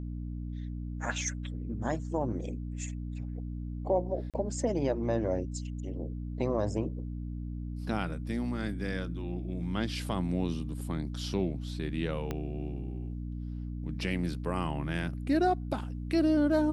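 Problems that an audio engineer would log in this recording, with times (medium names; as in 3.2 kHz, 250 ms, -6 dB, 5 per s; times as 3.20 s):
hum 60 Hz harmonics 5 -37 dBFS
4.30–4.34 s: dropout 37 ms
12.31 s: pop -20 dBFS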